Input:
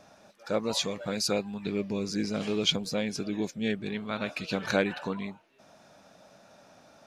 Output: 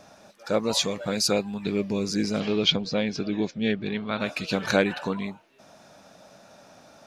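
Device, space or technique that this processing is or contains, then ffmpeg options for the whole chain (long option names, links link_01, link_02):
exciter from parts: -filter_complex "[0:a]asplit=2[link_01][link_02];[link_02]highpass=3200,asoftclip=type=tanh:threshold=-24dB,volume=-13dB[link_03];[link_01][link_03]amix=inputs=2:normalize=0,asettb=1/sr,asplit=3[link_04][link_05][link_06];[link_04]atrim=end=2.404[link_07];[link_05]atrim=start=2.4:end=4.2,asetpts=PTS-STARTPTS,afade=type=in:duration=0.004:curve=qsin,afade=type=out:start_time=1.796:duration=0.004:curve=qsin,lowpass=frequency=5000:width=0.5412,lowpass=frequency=5000:width=1.3066[link_08];[link_06]atrim=start=4.196[link_09];[link_07][link_08]acrossfade=duration=0.004:curve1=hsin:curve2=qsin[link_10];[link_10][link_09]acrossfade=duration=0.004:curve1=qsin:curve2=hsin,volume=4.5dB"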